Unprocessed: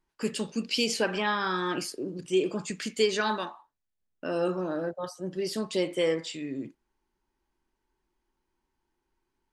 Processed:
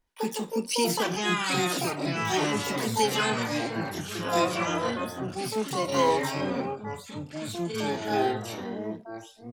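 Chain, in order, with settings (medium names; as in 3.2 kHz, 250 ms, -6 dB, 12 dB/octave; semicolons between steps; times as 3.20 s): comb 4.1 ms, depth 45%; harmony voices +12 st -1 dB; ever faster or slower copies 586 ms, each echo -4 st, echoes 3; trim -3 dB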